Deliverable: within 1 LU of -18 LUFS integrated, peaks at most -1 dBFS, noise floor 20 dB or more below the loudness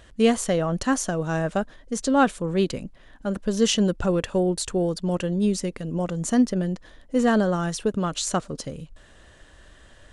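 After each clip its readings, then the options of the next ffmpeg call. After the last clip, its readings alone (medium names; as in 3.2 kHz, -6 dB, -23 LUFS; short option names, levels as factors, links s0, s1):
loudness -24.5 LUFS; peak level -8.0 dBFS; loudness target -18.0 LUFS
-> -af "volume=2.11"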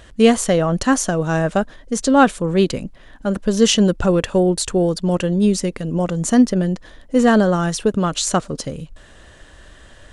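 loudness -18.0 LUFS; peak level -1.5 dBFS; noise floor -45 dBFS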